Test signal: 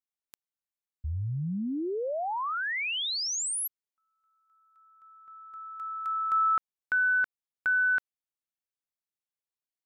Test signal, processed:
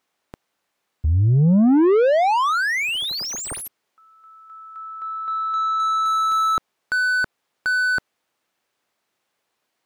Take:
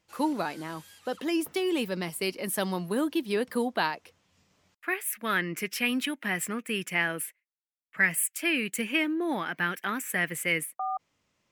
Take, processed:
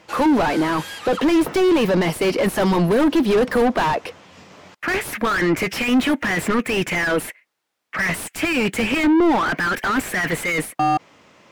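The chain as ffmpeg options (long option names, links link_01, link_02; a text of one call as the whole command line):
ffmpeg -i in.wav -filter_complex "[0:a]asplit=2[link_01][link_02];[link_02]highpass=frequency=720:poles=1,volume=36dB,asoftclip=type=tanh:threshold=-10.5dB[link_03];[link_01][link_03]amix=inputs=2:normalize=0,lowpass=frequency=2500:poles=1,volume=-6dB,tiltshelf=frequency=760:gain=4.5" out.wav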